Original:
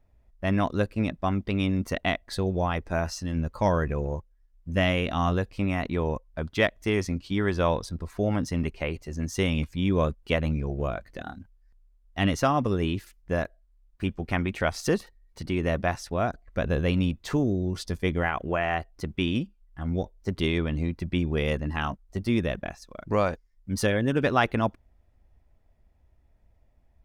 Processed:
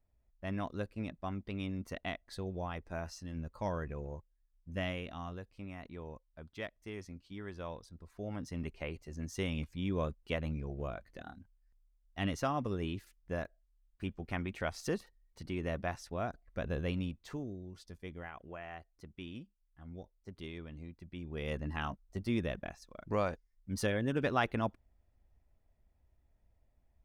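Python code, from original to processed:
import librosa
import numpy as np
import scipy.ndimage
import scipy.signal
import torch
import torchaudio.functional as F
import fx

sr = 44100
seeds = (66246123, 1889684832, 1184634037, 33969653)

y = fx.gain(x, sr, db=fx.line((4.87, -13.0), (5.3, -19.0), (7.94, -19.0), (8.73, -10.5), (16.89, -10.5), (17.67, -19.5), (21.15, -19.5), (21.6, -8.5)))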